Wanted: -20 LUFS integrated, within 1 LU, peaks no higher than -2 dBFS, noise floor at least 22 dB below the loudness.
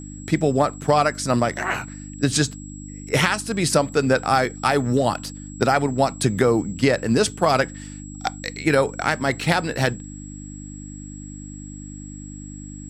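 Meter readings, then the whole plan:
hum 50 Hz; harmonics up to 300 Hz; hum level -35 dBFS; steady tone 7700 Hz; tone level -42 dBFS; loudness -21.5 LUFS; peak -4.5 dBFS; loudness target -20.0 LUFS
-> de-hum 50 Hz, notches 6; notch 7700 Hz, Q 30; gain +1.5 dB

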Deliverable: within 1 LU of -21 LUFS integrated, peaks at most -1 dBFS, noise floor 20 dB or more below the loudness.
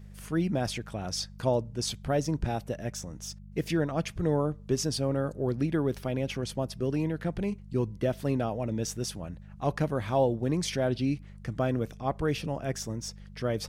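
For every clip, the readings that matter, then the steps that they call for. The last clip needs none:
hum 50 Hz; harmonics up to 200 Hz; hum level -45 dBFS; loudness -31.0 LUFS; peak -14.0 dBFS; loudness target -21.0 LUFS
-> de-hum 50 Hz, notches 4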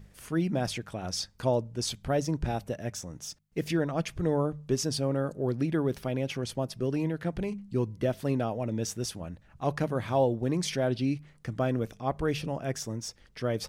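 hum none; loudness -31.0 LUFS; peak -14.0 dBFS; loudness target -21.0 LUFS
-> gain +10 dB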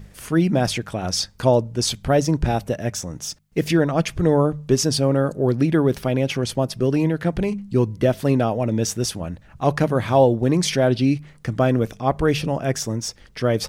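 loudness -21.0 LUFS; peak -4.0 dBFS; noise floor -49 dBFS

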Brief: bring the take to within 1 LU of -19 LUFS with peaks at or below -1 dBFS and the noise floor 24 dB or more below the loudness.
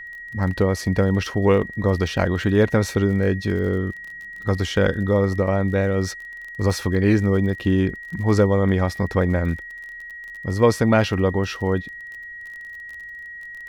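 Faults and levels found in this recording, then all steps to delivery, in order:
ticks 35/s; steady tone 1900 Hz; tone level -34 dBFS; loudness -21.0 LUFS; peak -4.5 dBFS; loudness target -19.0 LUFS
-> de-click; notch 1900 Hz, Q 30; gain +2 dB

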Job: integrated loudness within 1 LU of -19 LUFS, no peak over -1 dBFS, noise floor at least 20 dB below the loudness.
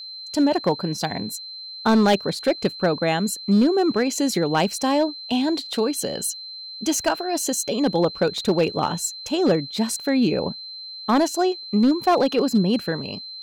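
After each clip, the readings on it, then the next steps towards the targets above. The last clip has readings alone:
clipped 0.9%; flat tops at -12.0 dBFS; steady tone 4100 Hz; tone level -34 dBFS; loudness -22.0 LUFS; peak -12.0 dBFS; loudness target -19.0 LUFS
-> clip repair -12 dBFS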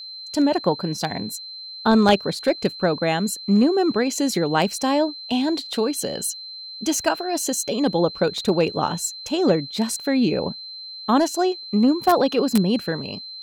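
clipped 0.0%; steady tone 4100 Hz; tone level -34 dBFS
-> notch 4100 Hz, Q 30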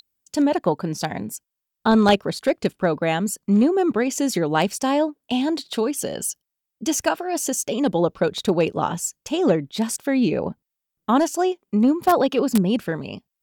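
steady tone none; loudness -22.0 LUFS; peak -3.0 dBFS; loudness target -19.0 LUFS
-> gain +3 dB; limiter -1 dBFS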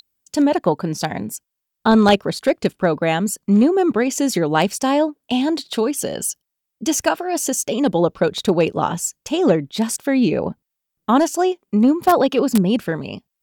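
loudness -19.0 LUFS; peak -1.0 dBFS; noise floor -80 dBFS

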